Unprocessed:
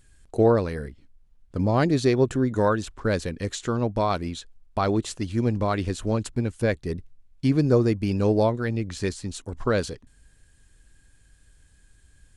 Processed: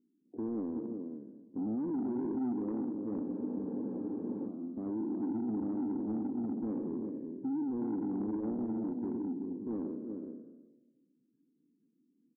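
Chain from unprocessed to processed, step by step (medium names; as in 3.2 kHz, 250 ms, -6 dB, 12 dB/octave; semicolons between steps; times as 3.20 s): spectral sustain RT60 1.23 s; Butterworth band-pass 270 Hz, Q 2.6; peak limiter -27 dBFS, peak gain reduction 12 dB; delay 371 ms -6 dB; saturation -29 dBFS, distortion -17 dB; Schroeder reverb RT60 1.2 s, combs from 29 ms, DRR 18 dB; spectral freeze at 3.25 s, 1.23 s; Vorbis 16 kbps 22.05 kHz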